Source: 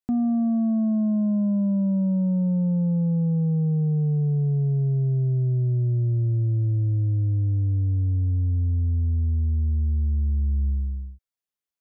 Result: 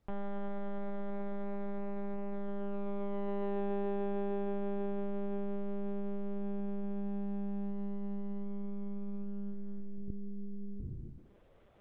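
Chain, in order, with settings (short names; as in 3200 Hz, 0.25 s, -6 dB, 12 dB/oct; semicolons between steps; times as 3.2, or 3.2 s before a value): in parallel at +3 dB: limiter -31.5 dBFS, peak gain reduction 12 dB; on the sum: thinning echo 0.121 s, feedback 54%, high-pass 450 Hz, level -20.5 dB; reverse; upward compressor, threshold -26 dBFS; reverse; band-pass sweep 990 Hz -> 470 Hz, 2.27–3.62; hard clip -35.5 dBFS, distortion -11 dB; monotone LPC vocoder at 8 kHz 200 Hz; added noise brown -73 dBFS; gain +5 dB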